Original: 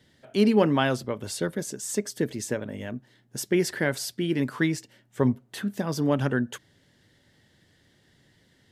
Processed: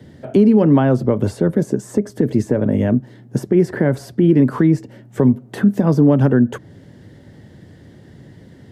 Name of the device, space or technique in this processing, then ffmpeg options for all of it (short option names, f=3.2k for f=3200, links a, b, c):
mastering chain: -filter_complex "[0:a]highpass=60,equalizer=f=3.5k:t=o:w=0.77:g=-2.5,acrossover=split=160|1900[a][b][c];[a]acompressor=threshold=-39dB:ratio=4[d];[b]acompressor=threshold=-27dB:ratio=4[e];[c]acompressor=threshold=-47dB:ratio=4[f];[d][e][f]amix=inputs=3:normalize=0,acompressor=threshold=-36dB:ratio=1.5,tiltshelf=f=970:g=8.5,alimiter=level_in=18dB:limit=-1dB:release=50:level=0:latency=1,volume=-3.5dB"